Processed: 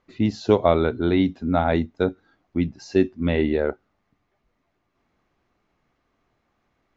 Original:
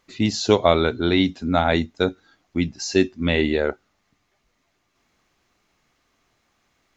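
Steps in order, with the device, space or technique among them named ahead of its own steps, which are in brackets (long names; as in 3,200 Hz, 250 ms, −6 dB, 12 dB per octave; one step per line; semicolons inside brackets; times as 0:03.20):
through cloth (low-pass filter 6,600 Hz 12 dB per octave; high-shelf EQ 2,300 Hz −14.5 dB)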